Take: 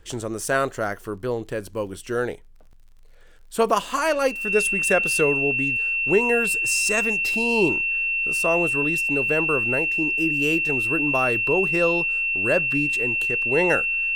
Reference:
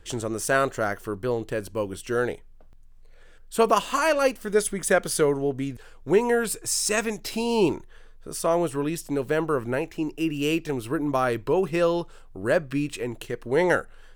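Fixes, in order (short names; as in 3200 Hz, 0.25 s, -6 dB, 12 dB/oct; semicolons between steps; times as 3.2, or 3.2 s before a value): de-click; notch 2700 Hz, Q 30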